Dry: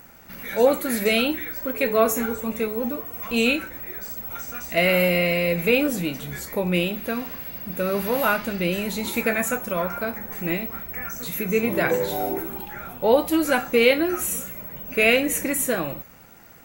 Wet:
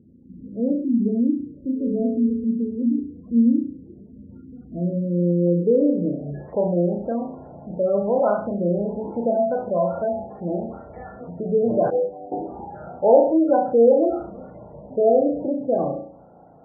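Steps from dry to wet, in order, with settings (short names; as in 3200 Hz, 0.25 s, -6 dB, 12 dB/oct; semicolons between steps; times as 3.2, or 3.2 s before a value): on a send: flutter echo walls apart 5.9 m, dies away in 0.5 s; 11.9–12.32 on the sum: expander -14 dBFS; HPF 57 Hz 12 dB/oct; in parallel at -9 dB: soft clip -16 dBFS, distortion -12 dB; on the sum: low-pass sweep 260 Hz -> 690 Hz, 5–6.43; spectral gate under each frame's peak -25 dB strong; gain -4.5 dB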